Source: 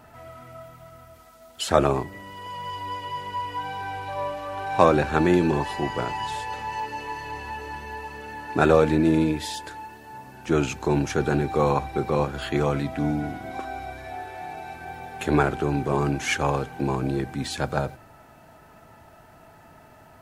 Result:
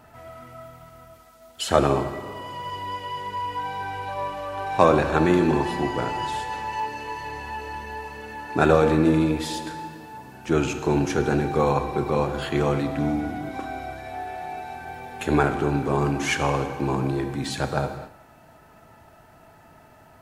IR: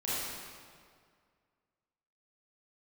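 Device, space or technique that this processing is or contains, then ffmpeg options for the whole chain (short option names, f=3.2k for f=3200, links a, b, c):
keyed gated reverb: -filter_complex "[0:a]asplit=3[a][b][c];[1:a]atrim=start_sample=2205[d];[b][d]afir=irnorm=-1:irlink=0[e];[c]apad=whole_len=891626[f];[e][f]sidechaingate=range=-33dB:threshold=-47dB:ratio=16:detection=peak,volume=-13dB[g];[a][g]amix=inputs=2:normalize=0,volume=-1dB"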